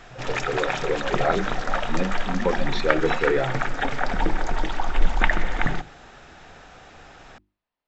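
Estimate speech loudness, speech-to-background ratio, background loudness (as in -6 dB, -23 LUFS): -27.5 LUFS, -0.5 dB, -27.0 LUFS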